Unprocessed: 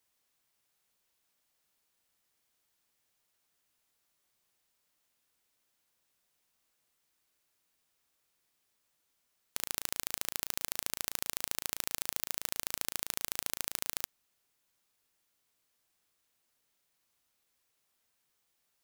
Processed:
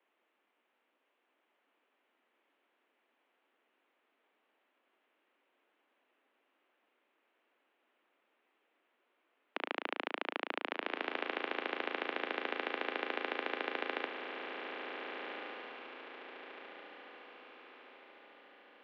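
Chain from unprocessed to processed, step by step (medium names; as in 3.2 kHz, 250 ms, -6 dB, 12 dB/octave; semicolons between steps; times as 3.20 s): mistuned SSB +73 Hz 190–2900 Hz; tilt shelf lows +3.5 dB, about 880 Hz; echo that smears into a reverb 1503 ms, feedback 46%, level -4.5 dB; trim +8.5 dB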